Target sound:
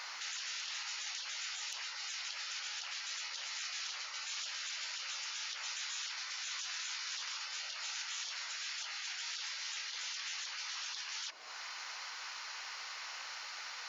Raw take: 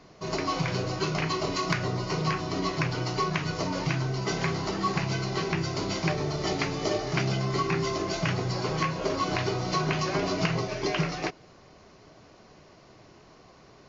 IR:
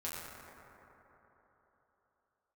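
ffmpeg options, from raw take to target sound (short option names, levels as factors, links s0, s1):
-af "acompressor=threshold=0.00708:ratio=5,afftfilt=real='re*lt(hypot(re,im),0.00447)':imag='im*lt(hypot(re,im),0.00447)':win_size=1024:overlap=0.75,highpass=1100,volume=6.68"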